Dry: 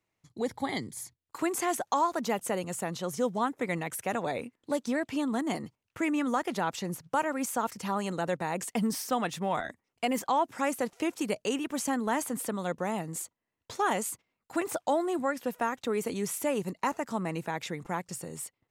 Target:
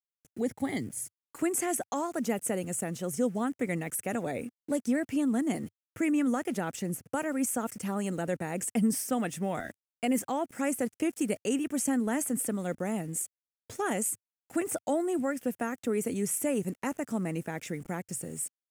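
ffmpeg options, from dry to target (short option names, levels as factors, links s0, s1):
-af "adynamicequalizer=threshold=0.00141:dfrequency=8200:dqfactor=7.5:tfrequency=8200:tqfactor=7.5:attack=5:release=100:ratio=0.375:range=2.5:mode=boostabove:tftype=bell,aeval=exprs='val(0)*gte(abs(val(0)),0.00335)':c=same,equalizer=f=100:t=o:w=0.67:g=4,equalizer=f=250:t=o:w=0.67:g=4,equalizer=f=1000:t=o:w=0.67:g=-11,equalizer=f=4000:t=o:w=0.67:g=-11,equalizer=f=10000:t=o:w=0.67:g=5"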